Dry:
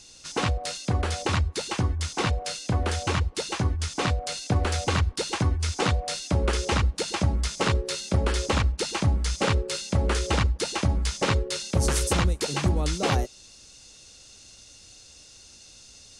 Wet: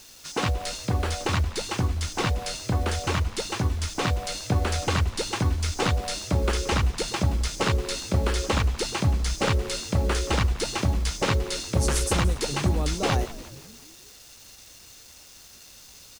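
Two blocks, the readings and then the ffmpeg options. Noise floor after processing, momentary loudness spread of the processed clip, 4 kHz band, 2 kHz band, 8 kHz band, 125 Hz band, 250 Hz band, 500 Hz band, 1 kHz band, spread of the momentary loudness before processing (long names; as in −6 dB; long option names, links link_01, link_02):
−49 dBFS, 21 LU, 0.0 dB, 0.0 dB, 0.0 dB, 0.0 dB, 0.0 dB, 0.0 dB, 0.0 dB, 3 LU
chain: -filter_complex "[0:a]acrusher=bits=7:mix=0:aa=0.000001,asplit=6[link_01][link_02][link_03][link_04][link_05][link_06];[link_02]adelay=175,afreqshift=-96,volume=-16dB[link_07];[link_03]adelay=350,afreqshift=-192,volume=-21.7dB[link_08];[link_04]adelay=525,afreqshift=-288,volume=-27.4dB[link_09];[link_05]adelay=700,afreqshift=-384,volume=-33dB[link_10];[link_06]adelay=875,afreqshift=-480,volume=-38.7dB[link_11];[link_01][link_07][link_08][link_09][link_10][link_11]amix=inputs=6:normalize=0"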